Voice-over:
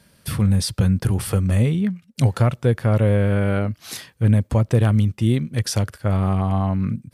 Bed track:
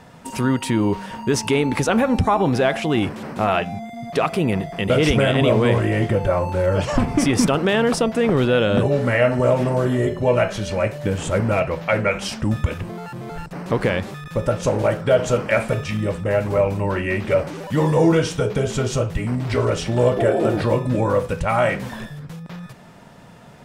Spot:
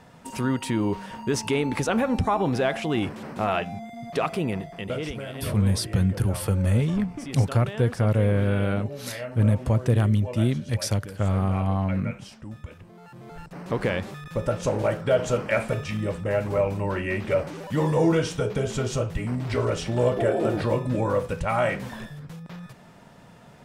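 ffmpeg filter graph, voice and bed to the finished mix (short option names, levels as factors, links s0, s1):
-filter_complex "[0:a]adelay=5150,volume=0.631[s0];[1:a]volume=2.37,afade=t=out:st=4.29:d=0.9:silence=0.237137,afade=t=in:st=12.89:d=1.01:silence=0.223872[s1];[s0][s1]amix=inputs=2:normalize=0"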